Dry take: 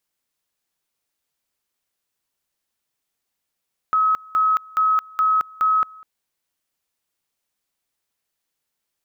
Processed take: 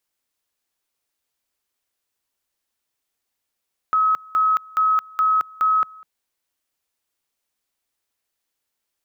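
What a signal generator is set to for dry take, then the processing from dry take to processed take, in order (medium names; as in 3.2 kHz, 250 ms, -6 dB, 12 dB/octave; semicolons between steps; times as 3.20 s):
two-level tone 1.28 kHz -14.5 dBFS, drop 25 dB, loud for 0.22 s, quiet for 0.20 s, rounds 5
peaking EQ 160 Hz -10.5 dB 0.35 oct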